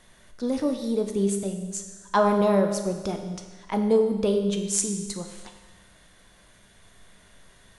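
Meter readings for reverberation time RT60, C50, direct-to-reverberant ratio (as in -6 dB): 1.3 s, 7.0 dB, 4.5 dB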